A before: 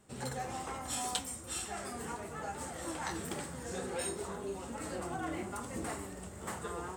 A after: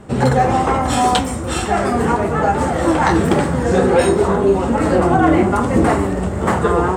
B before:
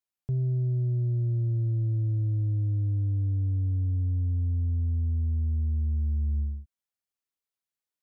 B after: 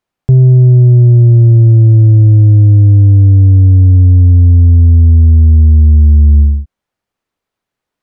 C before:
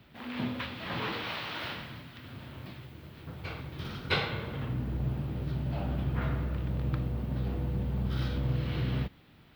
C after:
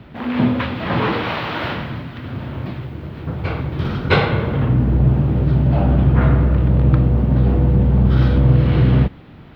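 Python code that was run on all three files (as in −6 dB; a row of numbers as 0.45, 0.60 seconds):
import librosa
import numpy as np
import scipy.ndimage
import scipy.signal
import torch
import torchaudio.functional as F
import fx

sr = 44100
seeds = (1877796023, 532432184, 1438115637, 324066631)

p1 = 10.0 ** (-23.5 / 20.0) * np.tanh(x / 10.0 ** (-23.5 / 20.0))
p2 = x + (p1 * librosa.db_to_amplitude(-6.0))
p3 = fx.lowpass(p2, sr, hz=1100.0, slope=6)
y = librosa.util.normalize(p3) * 10.0 ** (-2 / 20.0)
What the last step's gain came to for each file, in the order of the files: +23.5, +19.0, +14.5 decibels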